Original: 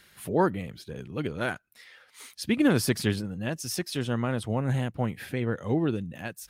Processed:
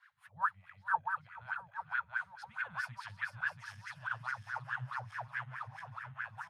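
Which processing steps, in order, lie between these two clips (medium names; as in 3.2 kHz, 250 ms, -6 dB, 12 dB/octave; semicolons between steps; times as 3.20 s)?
backward echo that repeats 341 ms, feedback 74%, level -1 dB; elliptic band-stop 120–980 Hz, stop band 60 dB; wah-wah 4.7 Hz 270–1700 Hz, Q 7.8; delay 435 ms -20 dB; trim +6.5 dB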